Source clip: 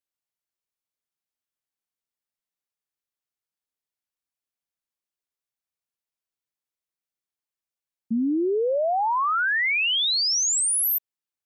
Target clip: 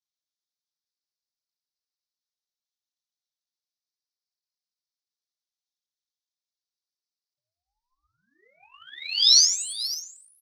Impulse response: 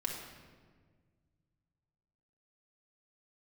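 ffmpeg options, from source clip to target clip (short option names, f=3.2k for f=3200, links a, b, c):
-filter_complex "[0:a]asuperpass=centerf=4800:order=4:qfactor=3.4,atempo=1.1,crystalizer=i=3.5:c=0,asplit=2[a][b];[1:a]atrim=start_sample=2205,asetrate=88200,aresample=44100,lowpass=3.1k[c];[b][c]afir=irnorm=-1:irlink=0,volume=-12.5dB[d];[a][d]amix=inputs=2:normalize=0,flanger=delay=17:depth=2.3:speed=0.33,asplit=2[e][f];[f]adelay=530.6,volume=-7dB,highshelf=f=4k:g=-11.9[g];[e][g]amix=inputs=2:normalize=0,aphaser=in_gain=1:out_gain=1:delay=4.9:decay=0.46:speed=0.68:type=triangular,aeval=exprs='val(0)*sin(2*PI*600*n/s+600*0.4/0.34*sin(2*PI*0.34*n/s))':c=same,volume=4dB"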